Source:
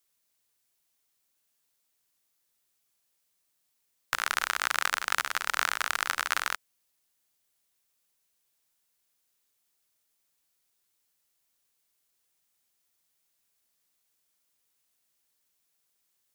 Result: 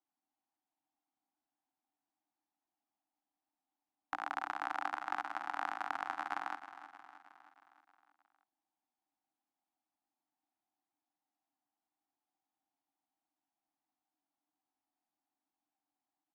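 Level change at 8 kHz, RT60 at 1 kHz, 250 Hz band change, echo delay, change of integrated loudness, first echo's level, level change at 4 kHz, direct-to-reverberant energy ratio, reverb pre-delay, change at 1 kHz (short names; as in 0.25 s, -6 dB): under -25 dB, none, +1.5 dB, 0.314 s, -11.0 dB, -13.0 dB, -21.5 dB, none, none, -5.0 dB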